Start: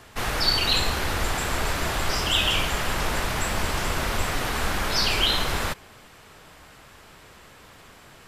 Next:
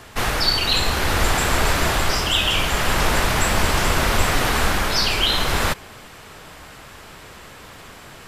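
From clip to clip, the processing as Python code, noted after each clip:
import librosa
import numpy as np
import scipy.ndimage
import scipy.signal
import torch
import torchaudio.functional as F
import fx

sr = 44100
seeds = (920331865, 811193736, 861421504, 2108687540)

y = fx.rider(x, sr, range_db=3, speed_s=0.5)
y = y * 10.0 ** (5.0 / 20.0)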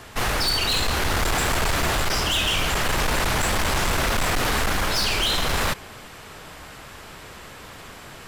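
y = np.clip(x, -10.0 ** (-19.0 / 20.0), 10.0 ** (-19.0 / 20.0))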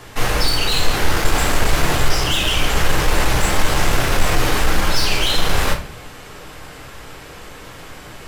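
y = fx.room_shoebox(x, sr, seeds[0], volume_m3=42.0, walls='mixed', distance_m=0.52)
y = y * 10.0 ** (1.0 / 20.0)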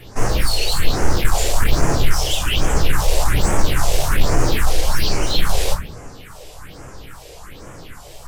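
y = fx.phaser_stages(x, sr, stages=4, low_hz=210.0, high_hz=3700.0, hz=1.2, feedback_pct=35)
y = fx.wow_flutter(y, sr, seeds[1], rate_hz=2.1, depth_cents=93.0)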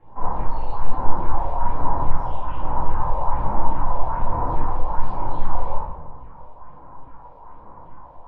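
y = fx.lowpass_res(x, sr, hz=960.0, q=12.0)
y = fx.room_shoebox(y, sr, seeds[2], volume_m3=390.0, walls='mixed', distance_m=2.2)
y = y * 10.0 ** (-17.5 / 20.0)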